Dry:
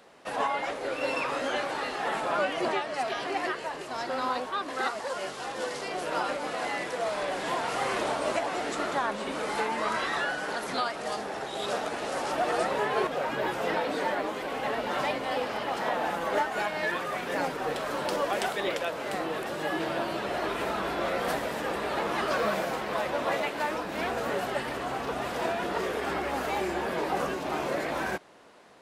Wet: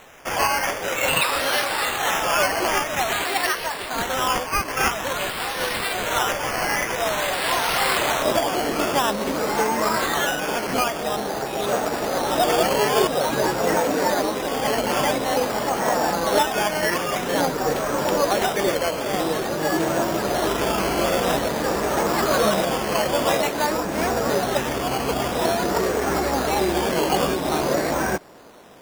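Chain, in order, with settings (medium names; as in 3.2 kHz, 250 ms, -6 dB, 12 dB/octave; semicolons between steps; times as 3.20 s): tilt EQ +3.5 dB/octave, from 8.23 s -1.5 dB/octave; decimation with a swept rate 9×, swing 60% 0.49 Hz; trim +7.5 dB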